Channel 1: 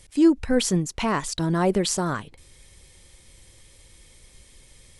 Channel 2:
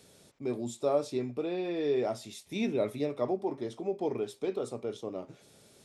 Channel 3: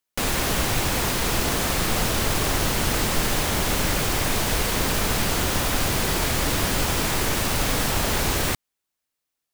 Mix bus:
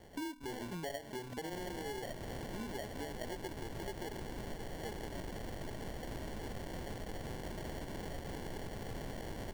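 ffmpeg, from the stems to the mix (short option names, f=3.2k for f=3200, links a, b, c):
-filter_complex "[0:a]volume=-9.5dB[a];[1:a]volume=1dB,asplit=3[b][c][d];[b]atrim=end=4.2,asetpts=PTS-STARTPTS,afade=t=out:st=4.196:d=0.004:c=hsin[e];[c]atrim=start=4.2:end=4.83,asetpts=PTS-STARTPTS,volume=0[f];[d]atrim=start=4.83,asetpts=PTS-STARTPTS,afade=t=in:d=0.004:c=hsin[g];[e][f][g]concat=n=3:v=0:a=1,asplit=2[h][i];[2:a]lowpass=f=6.2k:w=0.5412,lowpass=f=6.2k:w=1.3066,adelay=1350,volume=-9.5dB[j];[i]apad=whole_len=220494[k];[a][k]sidechaincompress=threshold=-35dB:ratio=8:attack=6.3:release=265[l];[l][h][j]amix=inputs=3:normalize=0,bandreject=f=50:t=h:w=6,bandreject=f=100:t=h:w=6,bandreject=f=150:t=h:w=6,bandreject=f=200:t=h:w=6,bandreject=f=250:t=h:w=6,bandreject=f=300:t=h:w=6,acrusher=samples=35:mix=1:aa=0.000001,acompressor=threshold=-39dB:ratio=12"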